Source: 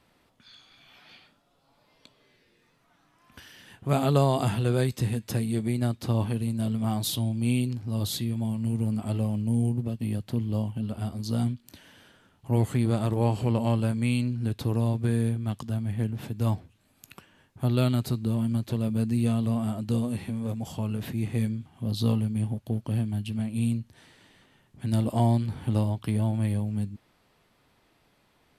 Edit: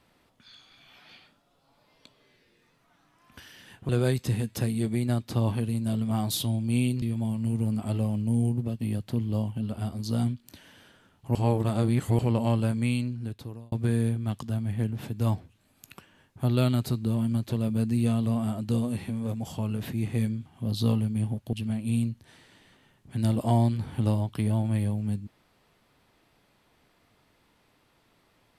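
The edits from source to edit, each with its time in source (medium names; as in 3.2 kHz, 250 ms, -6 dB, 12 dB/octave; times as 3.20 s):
3.89–4.62 s: delete
7.75–8.22 s: delete
12.55–13.39 s: reverse
14.00–14.92 s: fade out
22.73–23.22 s: delete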